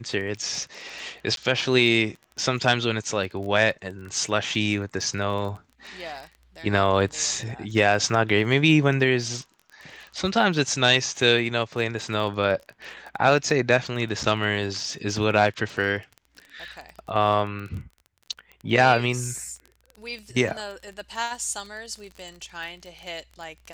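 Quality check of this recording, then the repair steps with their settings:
crackle 25 per s -33 dBFS
1.36–1.37 s: dropout 12 ms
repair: de-click; interpolate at 1.36 s, 12 ms

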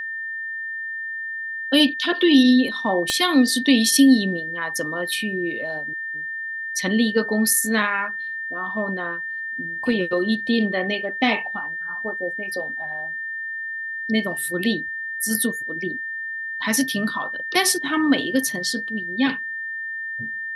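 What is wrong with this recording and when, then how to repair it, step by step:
whine 1.8 kHz -27 dBFS
3.10 s: pop -8 dBFS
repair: de-click; band-stop 1.8 kHz, Q 30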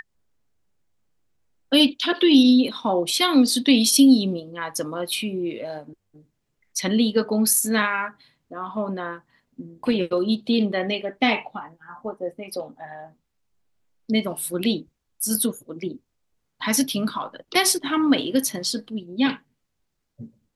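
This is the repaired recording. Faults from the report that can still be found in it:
3.10 s: pop

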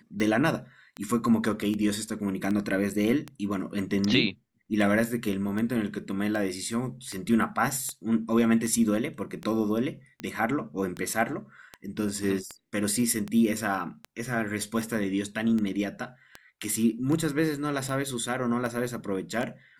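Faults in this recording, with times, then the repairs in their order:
tick 78 rpm -20 dBFS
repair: de-click

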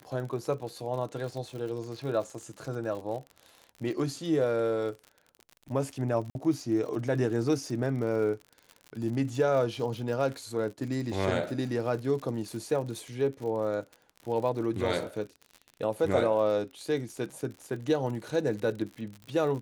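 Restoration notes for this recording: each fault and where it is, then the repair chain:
crackle 57 per s -37 dBFS
6.30–6.35 s: dropout 51 ms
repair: de-click; interpolate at 6.30 s, 51 ms

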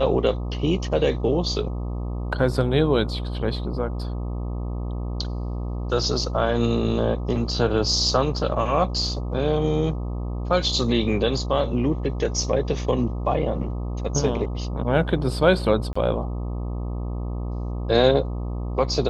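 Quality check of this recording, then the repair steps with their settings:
buzz 60 Hz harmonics 21 -28 dBFS
15.93–15.96 s: dropout 25 ms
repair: de-hum 60 Hz, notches 21; interpolate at 15.93 s, 25 ms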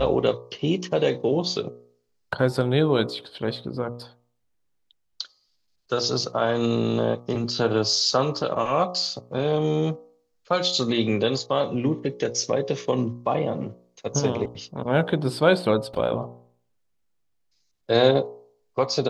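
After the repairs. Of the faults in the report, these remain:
nothing left

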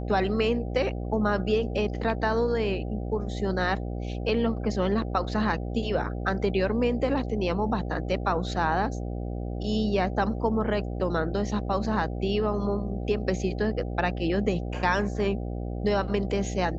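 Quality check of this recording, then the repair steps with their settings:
buzz 60 Hz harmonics 13 -32 dBFS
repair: de-hum 60 Hz, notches 13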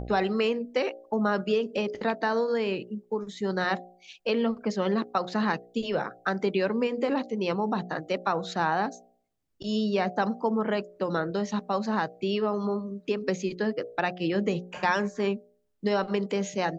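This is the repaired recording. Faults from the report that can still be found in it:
nothing left

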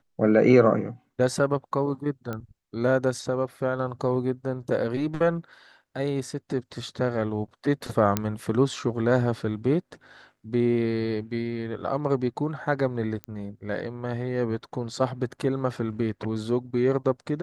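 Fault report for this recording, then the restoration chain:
2.33 s: pop -19 dBFS
8.17 s: pop -8 dBFS
13.24 s: pop -20 dBFS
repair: de-click

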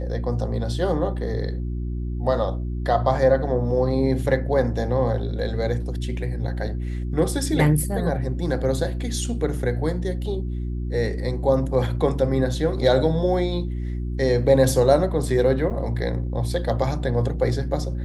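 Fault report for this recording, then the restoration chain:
hum 60 Hz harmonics 6 -27 dBFS
15.70–15.71 s: dropout 6.9 ms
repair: de-hum 60 Hz, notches 6; interpolate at 15.70 s, 6.9 ms

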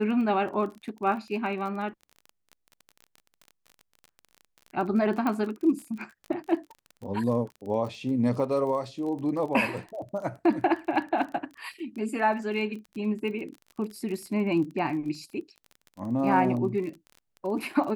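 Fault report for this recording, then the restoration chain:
crackle 29 per s -36 dBFS
5.27 s: pop -17 dBFS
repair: de-click

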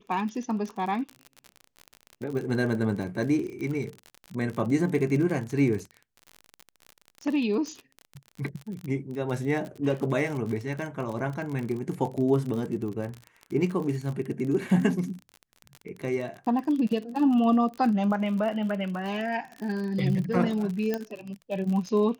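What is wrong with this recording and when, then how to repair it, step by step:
crackle 43 per s -32 dBFS
20.94 s: pop -15 dBFS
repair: de-click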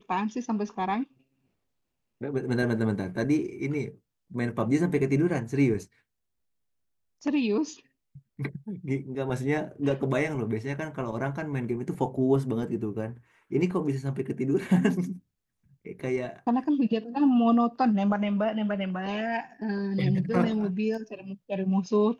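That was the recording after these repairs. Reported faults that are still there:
20.94 s: pop

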